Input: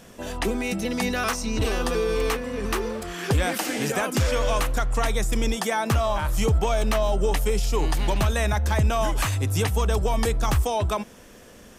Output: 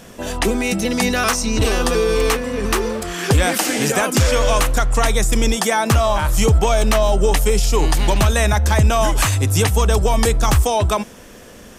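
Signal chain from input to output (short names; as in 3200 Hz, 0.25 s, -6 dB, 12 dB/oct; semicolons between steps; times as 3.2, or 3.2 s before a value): dynamic EQ 7800 Hz, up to +4 dB, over -46 dBFS, Q 0.76; gain +7 dB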